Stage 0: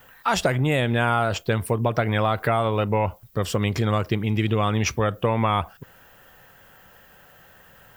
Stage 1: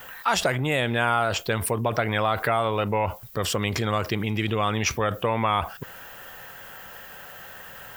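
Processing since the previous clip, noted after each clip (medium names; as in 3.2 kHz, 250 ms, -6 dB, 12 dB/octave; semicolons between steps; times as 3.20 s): bass shelf 400 Hz -8 dB; in parallel at -2.5 dB: compressor with a negative ratio -37 dBFS, ratio -1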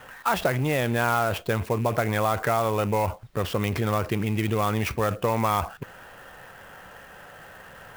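rattle on loud lows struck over -36 dBFS, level -32 dBFS; tape spacing loss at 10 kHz 21 dB; sampling jitter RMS 0.025 ms; trim +1.5 dB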